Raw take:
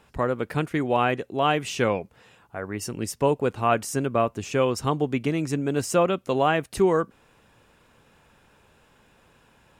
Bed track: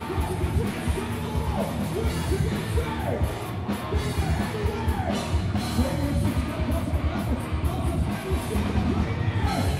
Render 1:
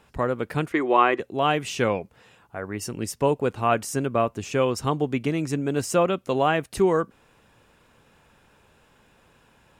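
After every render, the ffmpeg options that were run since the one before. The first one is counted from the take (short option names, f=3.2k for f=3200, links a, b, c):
-filter_complex "[0:a]asettb=1/sr,asplit=3[a][b][c];[a]atrim=end=0.724[d];[b]atrim=start=0.72:end=1.2,asetpts=PTS-STARTPTS,afade=t=in:d=0.004:c=qsin,afade=t=out:st=0.476:d=0.004:c=qsin,highpass=310,equalizer=f=350:t=q:w=4:g=10,equalizer=f=1.1k:t=q:w=4:g=10,equalizer=f=2k:t=q:w=4:g=6,equalizer=f=6k:t=q:w=4:g=-6,lowpass=f=8.1k:w=0.5412,lowpass=f=8.1k:w=1.3066[e];[c]atrim=start=1.196[f];[d][e]acrossfade=d=0.004:c1=hsin:c2=qsin[g];[g][f]acrossfade=d=0.004:c1=qsin:c2=hsin"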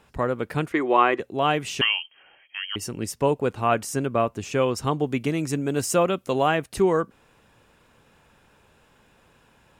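-filter_complex "[0:a]asettb=1/sr,asplit=3[a][b][c];[a]atrim=end=1.814[d];[b]atrim=start=1.81:end=2.76,asetpts=PTS-STARTPTS,afade=t=in:d=0.004:c=qsin,afade=t=out:st=0.946:d=0.004:c=qsin,lowpass=f=2.8k:t=q:w=0.5098,lowpass=f=2.8k:t=q:w=0.6013,lowpass=f=2.8k:t=q:w=0.9,lowpass=f=2.8k:t=q:w=2.563,afreqshift=-3300[e];[c]atrim=start=2.756[f];[d][e]acrossfade=d=0.004:c1=hsin:c2=qsin[g];[g][f]acrossfade=d=0.004:c1=qsin:c2=hsin,asettb=1/sr,asplit=3[h][i][j];[h]atrim=end=5.064[k];[i]atrim=start=5.06:end=6.55,asetpts=PTS-STARTPTS,afade=t=in:d=0.004:c=qsin,afade=t=out:st=1.486:d=0.004:c=qsin,highshelf=f=6.7k:g=7[l];[j]atrim=start=6.546[m];[k][l]acrossfade=d=0.004:c1=hsin:c2=qsin[n];[n][m]acrossfade=d=0.004:c1=qsin:c2=hsin"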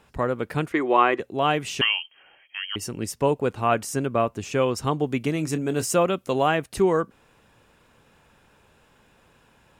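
-filter_complex "[0:a]asettb=1/sr,asplit=3[a][b][c];[a]atrim=end=5.334[d];[b]atrim=start=5.33:end=5.86,asetpts=PTS-STARTPTS,afade=t=in:d=0.004:c=qsin,afade=t=out:st=0.526:d=0.004:c=qsin,asplit=2[e][f];[f]adelay=26,volume=-12.5dB[g];[e][g]amix=inputs=2:normalize=0,atrim=end_sample=23373[h];[c]atrim=start=5.856[i];[d][h]acrossfade=d=0.004:c1=hsin:c2=qsin[j];[j][i]acrossfade=d=0.004:c1=qsin:c2=hsin"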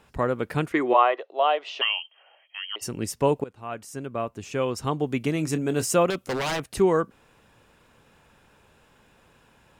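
-filter_complex "[0:a]asplit=3[a][b][c];[a]afade=t=out:st=0.93:d=0.02[d];[b]highpass=f=500:w=0.5412,highpass=f=500:w=1.3066,equalizer=f=630:t=q:w=4:g=6,equalizer=f=1.6k:t=q:w=4:g=-7,equalizer=f=2.3k:t=q:w=4:g=-7,lowpass=f=4.1k:w=0.5412,lowpass=f=4.1k:w=1.3066,afade=t=in:st=0.93:d=0.02,afade=t=out:st=2.81:d=0.02[e];[c]afade=t=in:st=2.81:d=0.02[f];[d][e][f]amix=inputs=3:normalize=0,asettb=1/sr,asplit=3[g][h][i];[g]atrim=end=6.104[j];[h]atrim=start=6.1:end=6.74,asetpts=PTS-STARTPTS,afade=t=in:d=0.004:c=qsin,afade=t=out:st=0.636:d=0.004:c=qsin,aeval=exprs='0.0841*(abs(mod(val(0)/0.0841+3,4)-2)-1)':c=same[k];[i]atrim=start=6.736[l];[j][k]acrossfade=d=0.004:c1=hsin:c2=qsin[m];[m][l]acrossfade=d=0.004:c1=qsin:c2=hsin,asplit=2[n][o];[n]atrim=end=3.44,asetpts=PTS-STARTPTS,afade=t=out:st=3.436:d=0.004:c=hsin:silence=0.105925[p];[o]atrim=start=3.44,asetpts=PTS-STARTPTS,afade=t=in:d=1.98:silence=0.105925[q];[p][q]concat=n=2:v=0:a=1"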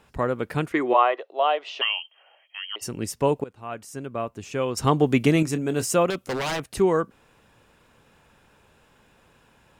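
-filter_complex "[0:a]asettb=1/sr,asplit=3[a][b][c];[a]atrim=end=4.774[d];[b]atrim=start=4.77:end=5.43,asetpts=PTS-STARTPTS,afade=t=in:d=0.004:c=qsin,afade=t=out:st=0.656:d=0.004:c=qsin,acontrast=82[e];[c]atrim=start=5.426[f];[d][e]acrossfade=d=0.004:c1=hsin:c2=qsin[g];[g][f]acrossfade=d=0.004:c1=qsin:c2=hsin"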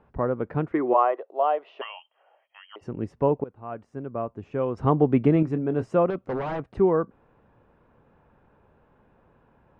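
-af "lowpass=1.1k"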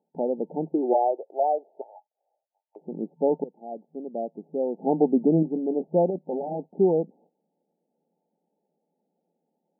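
-af "afftfilt=real='re*between(b*sr/4096,160,900)':imag='im*between(b*sr/4096,160,900)':win_size=4096:overlap=0.75,agate=range=-15dB:threshold=-55dB:ratio=16:detection=peak"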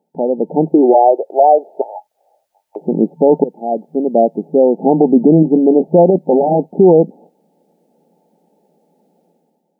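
-af "dynaudnorm=f=140:g=7:m=11dB,alimiter=level_in=9dB:limit=-1dB:release=50:level=0:latency=1"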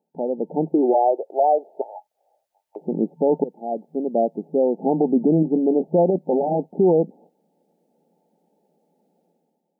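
-af "volume=-8.5dB"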